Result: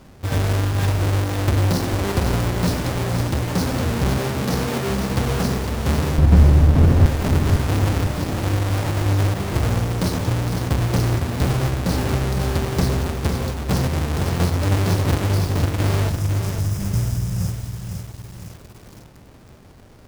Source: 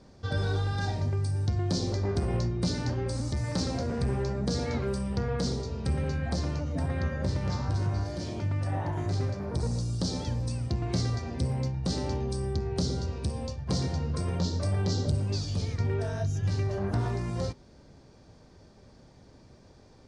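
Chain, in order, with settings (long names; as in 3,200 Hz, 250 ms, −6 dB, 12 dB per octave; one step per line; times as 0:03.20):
each half-wave held at its own peak
0:04.18–0:04.90: high-pass filter 140 Hz 24 dB per octave
0:06.18–0:07.06: spectral tilt −3 dB per octave
0:16.10–0:18.51: gain on a spectral selection 220–4,800 Hz −17 dB
feedback echo at a low word length 507 ms, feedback 55%, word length 7 bits, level −6 dB
level +3.5 dB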